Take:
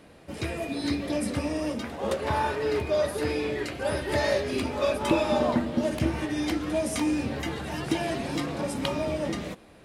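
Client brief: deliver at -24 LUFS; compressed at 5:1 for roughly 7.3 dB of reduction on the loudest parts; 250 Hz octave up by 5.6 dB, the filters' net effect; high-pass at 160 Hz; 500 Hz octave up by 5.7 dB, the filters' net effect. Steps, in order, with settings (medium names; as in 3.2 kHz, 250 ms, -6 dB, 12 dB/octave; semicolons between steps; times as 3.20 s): high-pass 160 Hz; peaking EQ 250 Hz +5.5 dB; peaking EQ 500 Hz +6 dB; compression 5:1, threshold -23 dBFS; trim +3.5 dB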